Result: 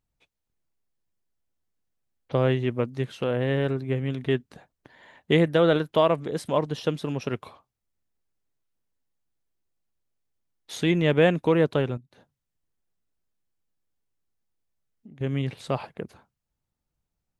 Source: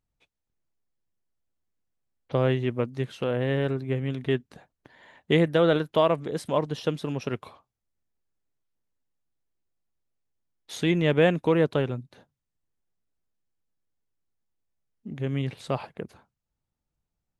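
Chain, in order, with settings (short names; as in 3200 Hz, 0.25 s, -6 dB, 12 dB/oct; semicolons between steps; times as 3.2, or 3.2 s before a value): 11.97–15.21 compressor 5:1, threshold -48 dBFS, peak gain reduction 13.5 dB; gain +1 dB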